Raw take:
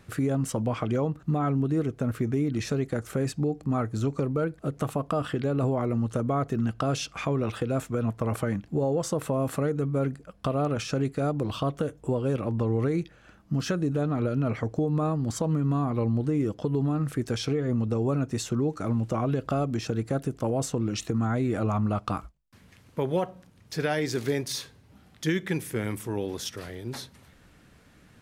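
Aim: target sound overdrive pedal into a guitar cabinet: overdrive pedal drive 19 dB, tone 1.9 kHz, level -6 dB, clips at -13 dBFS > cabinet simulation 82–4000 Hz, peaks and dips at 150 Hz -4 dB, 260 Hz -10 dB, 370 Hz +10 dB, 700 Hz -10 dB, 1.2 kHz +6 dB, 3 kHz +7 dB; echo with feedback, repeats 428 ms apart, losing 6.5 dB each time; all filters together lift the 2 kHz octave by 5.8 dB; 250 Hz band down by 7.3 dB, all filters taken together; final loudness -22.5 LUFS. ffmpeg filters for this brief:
-filter_complex "[0:a]equalizer=f=250:t=o:g=-9,equalizer=f=2000:t=o:g=6,aecho=1:1:428|856|1284|1712|2140|2568:0.473|0.222|0.105|0.0491|0.0231|0.0109,asplit=2[s0][s1];[s1]highpass=f=720:p=1,volume=8.91,asoftclip=type=tanh:threshold=0.224[s2];[s0][s2]amix=inputs=2:normalize=0,lowpass=f=1900:p=1,volume=0.501,highpass=82,equalizer=f=150:t=q:w=4:g=-4,equalizer=f=260:t=q:w=4:g=-10,equalizer=f=370:t=q:w=4:g=10,equalizer=f=700:t=q:w=4:g=-10,equalizer=f=1200:t=q:w=4:g=6,equalizer=f=3000:t=q:w=4:g=7,lowpass=f=4000:w=0.5412,lowpass=f=4000:w=1.3066,volume=1.19"

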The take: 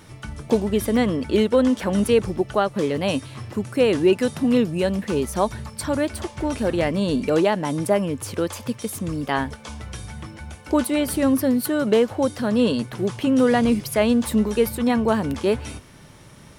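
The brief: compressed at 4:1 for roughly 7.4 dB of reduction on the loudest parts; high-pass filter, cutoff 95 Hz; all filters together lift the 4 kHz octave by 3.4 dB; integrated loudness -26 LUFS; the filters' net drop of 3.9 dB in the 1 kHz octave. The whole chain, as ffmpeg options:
-af "highpass=95,equalizer=f=1000:t=o:g=-5.5,equalizer=f=4000:t=o:g=5,acompressor=threshold=0.0794:ratio=4,volume=1.12"

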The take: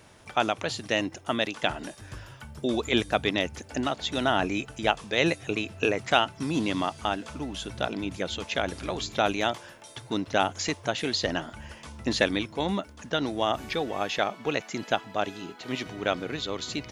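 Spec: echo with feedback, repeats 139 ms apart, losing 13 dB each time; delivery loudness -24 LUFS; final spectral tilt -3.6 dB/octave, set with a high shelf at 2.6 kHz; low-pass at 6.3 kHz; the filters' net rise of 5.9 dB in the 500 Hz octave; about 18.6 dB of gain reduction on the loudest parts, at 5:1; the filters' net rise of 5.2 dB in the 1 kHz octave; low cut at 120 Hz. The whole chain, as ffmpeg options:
-af "highpass=120,lowpass=6300,equalizer=f=500:t=o:g=6,equalizer=f=1000:t=o:g=4,highshelf=f=2600:g=5.5,acompressor=threshold=0.02:ratio=5,aecho=1:1:139|278|417:0.224|0.0493|0.0108,volume=4.73"

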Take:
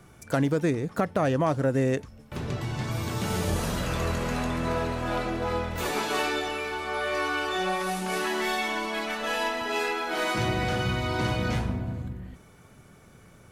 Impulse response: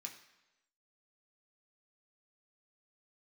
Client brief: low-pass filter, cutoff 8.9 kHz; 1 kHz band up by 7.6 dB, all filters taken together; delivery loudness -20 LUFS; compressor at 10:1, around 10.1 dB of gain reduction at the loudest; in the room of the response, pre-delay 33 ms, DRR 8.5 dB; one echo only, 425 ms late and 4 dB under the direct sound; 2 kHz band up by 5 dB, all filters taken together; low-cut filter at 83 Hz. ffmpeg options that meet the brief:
-filter_complex "[0:a]highpass=83,lowpass=8900,equalizer=f=1000:t=o:g=9,equalizer=f=2000:t=o:g=3,acompressor=threshold=0.0501:ratio=10,aecho=1:1:425:0.631,asplit=2[s0][s1];[1:a]atrim=start_sample=2205,adelay=33[s2];[s1][s2]afir=irnorm=-1:irlink=0,volume=0.596[s3];[s0][s3]amix=inputs=2:normalize=0,volume=2.66"

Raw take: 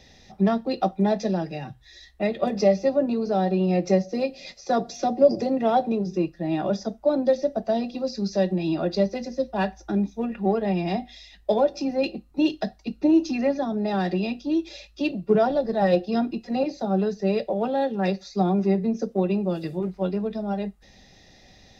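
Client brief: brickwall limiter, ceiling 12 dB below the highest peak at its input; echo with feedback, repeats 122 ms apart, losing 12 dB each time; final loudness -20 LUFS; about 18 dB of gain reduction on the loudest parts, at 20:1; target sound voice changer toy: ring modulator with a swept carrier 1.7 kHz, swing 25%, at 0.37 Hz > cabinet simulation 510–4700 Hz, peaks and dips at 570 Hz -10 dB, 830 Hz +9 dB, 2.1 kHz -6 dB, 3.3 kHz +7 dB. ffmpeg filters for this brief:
-af "acompressor=threshold=0.0355:ratio=20,alimiter=level_in=2.24:limit=0.0631:level=0:latency=1,volume=0.447,aecho=1:1:122|244|366:0.251|0.0628|0.0157,aeval=exprs='val(0)*sin(2*PI*1700*n/s+1700*0.25/0.37*sin(2*PI*0.37*n/s))':c=same,highpass=510,equalizer=f=570:t=q:w=4:g=-10,equalizer=f=830:t=q:w=4:g=9,equalizer=f=2100:t=q:w=4:g=-6,equalizer=f=3300:t=q:w=4:g=7,lowpass=f=4700:w=0.5412,lowpass=f=4700:w=1.3066,volume=11.2"

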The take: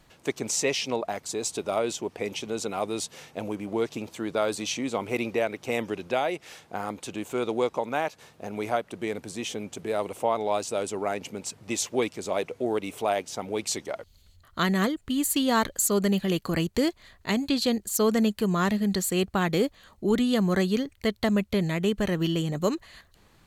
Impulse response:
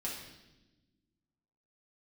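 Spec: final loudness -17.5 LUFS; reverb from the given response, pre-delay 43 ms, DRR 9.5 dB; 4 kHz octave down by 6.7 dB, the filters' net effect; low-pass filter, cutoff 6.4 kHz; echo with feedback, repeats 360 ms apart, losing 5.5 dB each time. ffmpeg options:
-filter_complex "[0:a]lowpass=6400,equalizer=f=4000:t=o:g=-8.5,aecho=1:1:360|720|1080|1440|1800|2160|2520:0.531|0.281|0.149|0.079|0.0419|0.0222|0.0118,asplit=2[s0][s1];[1:a]atrim=start_sample=2205,adelay=43[s2];[s1][s2]afir=irnorm=-1:irlink=0,volume=0.282[s3];[s0][s3]amix=inputs=2:normalize=0,volume=2.82"

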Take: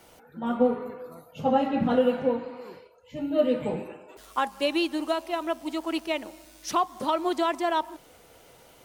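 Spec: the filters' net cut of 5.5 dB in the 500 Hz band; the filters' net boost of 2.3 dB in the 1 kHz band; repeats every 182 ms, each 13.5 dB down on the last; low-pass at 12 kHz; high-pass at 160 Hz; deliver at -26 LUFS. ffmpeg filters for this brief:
-af "highpass=160,lowpass=12000,equalizer=f=500:t=o:g=-8.5,equalizer=f=1000:t=o:g=5.5,aecho=1:1:182|364:0.211|0.0444,volume=1.33"

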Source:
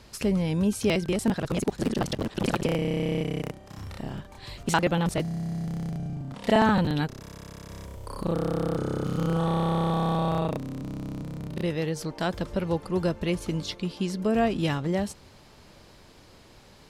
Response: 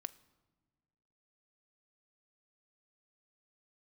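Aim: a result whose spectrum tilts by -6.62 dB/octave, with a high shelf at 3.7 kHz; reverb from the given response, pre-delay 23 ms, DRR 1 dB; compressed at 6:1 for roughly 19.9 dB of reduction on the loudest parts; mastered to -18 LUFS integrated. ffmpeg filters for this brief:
-filter_complex "[0:a]highshelf=f=3700:g=-7.5,acompressor=threshold=0.0112:ratio=6,asplit=2[s0][s1];[1:a]atrim=start_sample=2205,adelay=23[s2];[s1][s2]afir=irnorm=-1:irlink=0,volume=1.26[s3];[s0][s3]amix=inputs=2:normalize=0,volume=11.9"

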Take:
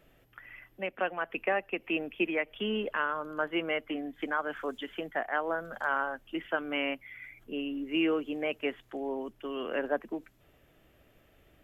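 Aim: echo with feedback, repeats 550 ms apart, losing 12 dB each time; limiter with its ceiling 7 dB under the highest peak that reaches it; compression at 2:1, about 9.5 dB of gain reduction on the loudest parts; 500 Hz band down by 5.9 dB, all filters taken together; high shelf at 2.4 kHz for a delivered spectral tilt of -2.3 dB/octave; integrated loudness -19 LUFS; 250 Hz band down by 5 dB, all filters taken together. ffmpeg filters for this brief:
-af "equalizer=f=250:t=o:g=-4,equalizer=f=500:t=o:g=-6,highshelf=f=2400:g=-6.5,acompressor=threshold=0.00501:ratio=2,alimiter=level_in=3.35:limit=0.0631:level=0:latency=1,volume=0.299,aecho=1:1:550|1100|1650:0.251|0.0628|0.0157,volume=23.7"

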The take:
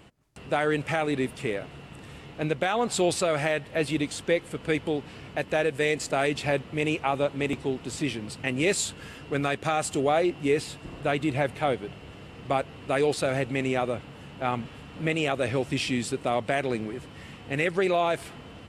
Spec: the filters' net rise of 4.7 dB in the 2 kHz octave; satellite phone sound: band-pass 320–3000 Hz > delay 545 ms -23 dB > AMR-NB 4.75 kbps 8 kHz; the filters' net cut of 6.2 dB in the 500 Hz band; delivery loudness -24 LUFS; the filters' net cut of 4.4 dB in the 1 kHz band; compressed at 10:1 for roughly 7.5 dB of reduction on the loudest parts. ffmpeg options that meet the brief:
-af "equalizer=f=500:t=o:g=-5.5,equalizer=f=1000:t=o:g=-6,equalizer=f=2000:t=o:g=8.5,acompressor=threshold=0.0501:ratio=10,highpass=320,lowpass=3000,aecho=1:1:545:0.0708,volume=3.98" -ar 8000 -c:a libopencore_amrnb -b:a 4750

